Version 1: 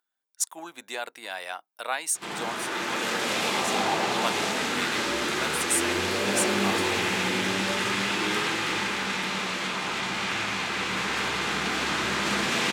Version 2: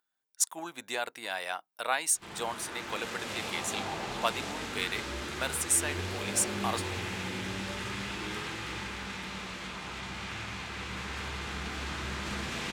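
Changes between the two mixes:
background -11.0 dB; master: remove high-pass 200 Hz 12 dB/octave

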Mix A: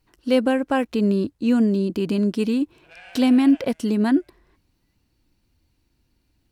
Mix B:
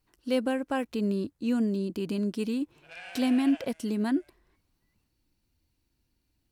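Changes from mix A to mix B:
speech -8.5 dB; master: add treble shelf 6 kHz +6 dB

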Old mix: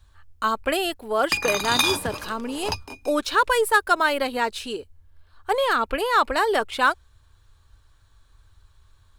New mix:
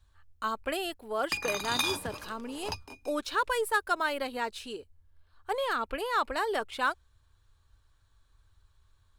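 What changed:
speech -9.0 dB; background -8.5 dB

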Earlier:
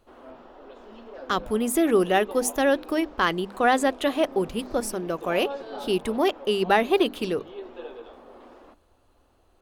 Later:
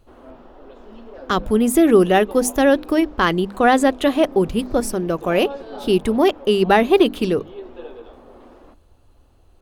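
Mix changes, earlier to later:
speech +4.0 dB; master: add bass shelf 330 Hz +8 dB

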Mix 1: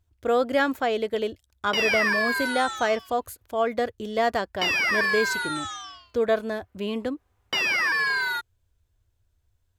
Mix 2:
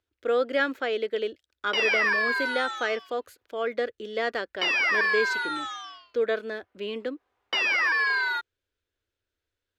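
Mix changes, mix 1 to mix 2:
speech: add high-order bell 840 Hz -9 dB 1 oct; master: add three-band isolator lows -22 dB, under 280 Hz, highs -16 dB, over 5.1 kHz

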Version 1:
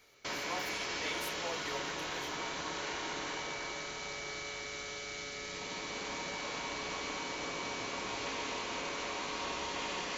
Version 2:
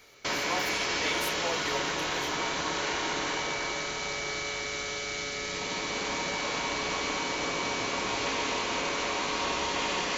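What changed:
speech +7.0 dB; background +8.0 dB

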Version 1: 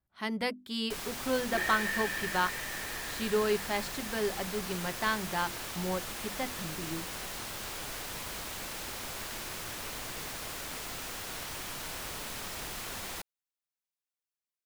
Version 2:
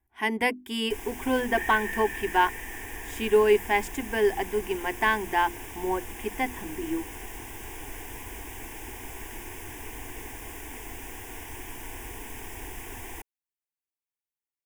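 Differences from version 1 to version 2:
speech +10.5 dB; first sound: add bass shelf 460 Hz +9 dB; master: add static phaser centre 860 Hz, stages 8

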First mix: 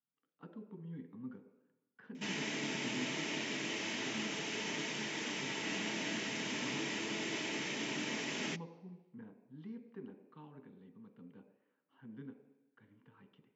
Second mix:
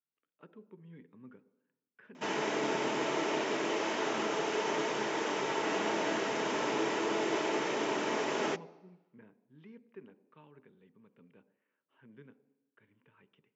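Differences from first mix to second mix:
speech: send -8.0 dB; background: add high-order bell 720 Hz +13 dB 2.4 oct

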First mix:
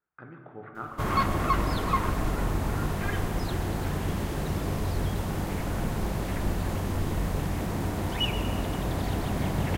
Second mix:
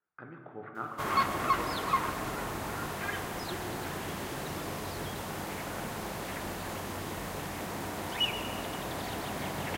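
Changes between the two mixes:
background: add bass shelf 420 Hz -9.5 dB; master: add high-pass 150 Hz 6 dB/octave

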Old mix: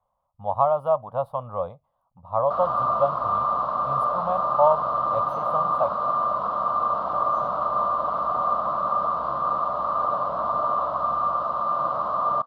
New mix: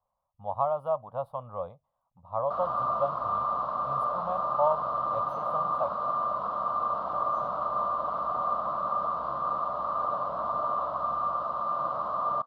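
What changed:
speech -7.0 dB; background -5.5 dB

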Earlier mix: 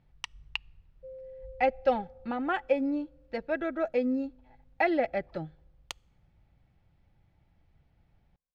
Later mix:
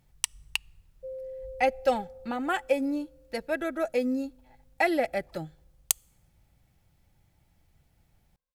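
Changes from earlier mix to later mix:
background +5.5 dB; master: remove distance through air 250 m

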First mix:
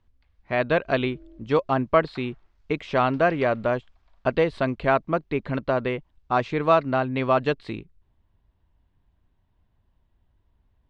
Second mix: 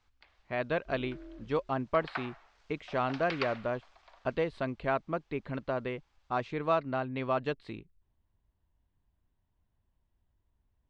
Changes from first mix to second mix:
speech -9.5 dB; first sound +12.0 dB; second sound: remove Gaussian low-pass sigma 12 samples

